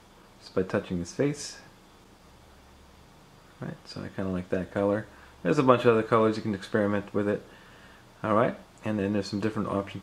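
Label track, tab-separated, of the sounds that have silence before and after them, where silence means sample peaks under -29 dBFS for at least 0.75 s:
3.620000	7.380000	sound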